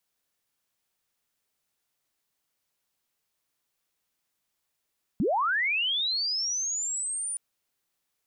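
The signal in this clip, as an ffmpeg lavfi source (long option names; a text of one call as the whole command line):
ffmpeg -f lavfi -i "aevalsrc='pow(10,(-22-7.5*t/2.17)/20)*sin(2*PI*(160*t+9340*t*t/(2*2.17)))':duration=2.17:sample_rate=44100" out.wav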